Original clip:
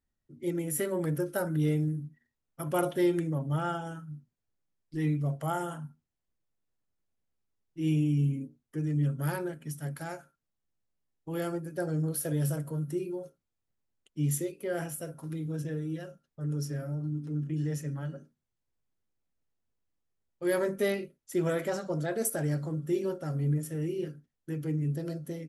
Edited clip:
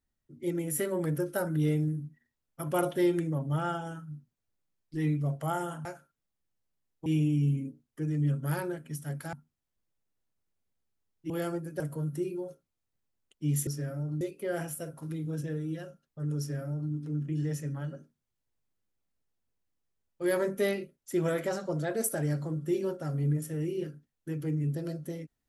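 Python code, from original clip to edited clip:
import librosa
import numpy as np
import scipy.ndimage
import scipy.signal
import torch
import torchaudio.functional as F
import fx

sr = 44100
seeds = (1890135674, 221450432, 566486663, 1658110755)

y = fx.edit(x, sr, fx.swap(start_s=5.85, length_s=1.97, other_s=10.09, other_length_s=1.21),
    fx.cut(start_s=11.8, length_s=0.75),
    fx.duplicate(start_s=16.59, length_s=0.54, to_s=14.42), tone=tone)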